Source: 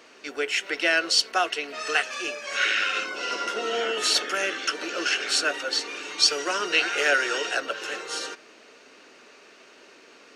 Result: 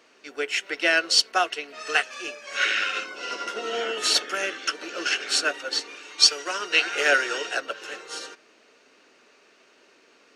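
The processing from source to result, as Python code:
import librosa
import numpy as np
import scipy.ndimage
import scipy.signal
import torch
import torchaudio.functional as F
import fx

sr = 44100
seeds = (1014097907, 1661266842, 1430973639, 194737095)

y = fx.low_shelf(x, sr, hz=380.0, db=-6.5, at=(5.95, 6.87))
y = fx.upward_expand(y, sr, threshold_db=-36.0, expansion=1.5)
y = y * 10.0 ** (4.0 / 20.0)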